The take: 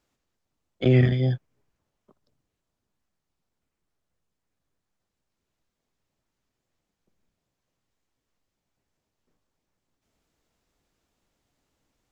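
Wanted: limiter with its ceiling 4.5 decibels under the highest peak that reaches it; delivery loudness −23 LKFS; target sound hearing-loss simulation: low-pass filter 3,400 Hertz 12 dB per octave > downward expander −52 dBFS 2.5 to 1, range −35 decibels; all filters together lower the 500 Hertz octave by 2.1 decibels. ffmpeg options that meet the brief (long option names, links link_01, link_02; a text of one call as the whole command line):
ffmpeg -i in.wav -af "equalizer=frequency=500:width_type=o:gain=-3,alimiter=limit=-14.5dB:level=0:latency=1,lowpass=3400,agate=range=-35dB:threshold=-52dB:ratio=2.5,volume=2dB" out.wav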